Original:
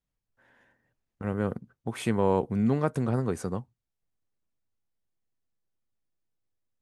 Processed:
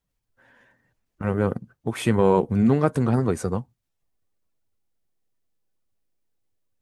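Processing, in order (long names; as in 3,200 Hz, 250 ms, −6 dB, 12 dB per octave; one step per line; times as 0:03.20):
spectral magnitudes quantised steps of 15 dB
level +6.5 dB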